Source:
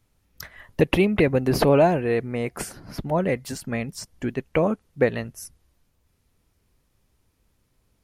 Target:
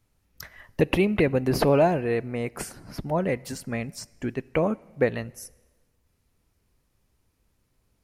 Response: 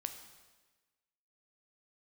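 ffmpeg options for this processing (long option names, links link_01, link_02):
-filter_complex "[0:a]asplit=2[link_01][link_02];[link_02]asuperstop=centerf=3400:order=4:qfactor=6[link_03];[1:a]atrim=start_sample=2205[link_04];[link_03][link_04]afir=irnorm=-1:irlink=0,volume=-12dB[link_05];[link_01][link_05]amix=inputs=2:normalize=0,volume=-4dB"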